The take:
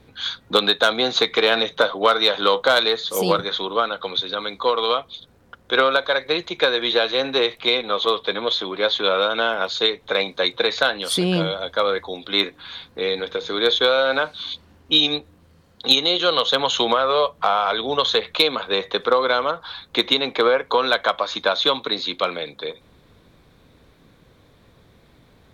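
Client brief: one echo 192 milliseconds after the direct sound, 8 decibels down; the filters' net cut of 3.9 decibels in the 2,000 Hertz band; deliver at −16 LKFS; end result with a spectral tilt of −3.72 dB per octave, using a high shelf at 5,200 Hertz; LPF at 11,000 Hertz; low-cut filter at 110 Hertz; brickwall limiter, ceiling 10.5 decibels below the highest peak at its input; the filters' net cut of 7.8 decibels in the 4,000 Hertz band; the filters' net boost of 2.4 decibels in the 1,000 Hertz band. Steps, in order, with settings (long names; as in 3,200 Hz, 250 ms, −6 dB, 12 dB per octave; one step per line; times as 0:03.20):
high-pass filter 110 Hz
low-pass filter 11,000 Hz
parametric band 1,000 Hz +6 dB
parametric band 2,000 Hz −8 dB
parametric band 4,000 Hz −8 dB
high-shelf EQ 5,200 Hz +3.5 dB
brickwall limiter −12 dBFS
single-tap delay 192 ms −8 dB
level +7.5 dB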